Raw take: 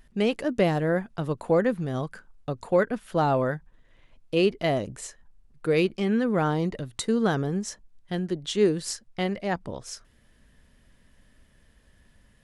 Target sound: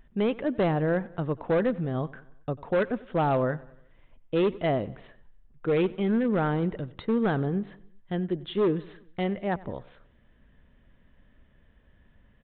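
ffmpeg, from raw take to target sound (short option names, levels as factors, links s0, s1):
-af "highshelf=f=2500:g=-9,aresample=8000,volume=9.44,asoftclip=hard,volume=0.106,aresample=44100,aecho=1:1:93|186|279|372:0.0891|0.0463|0.0241|0.0125"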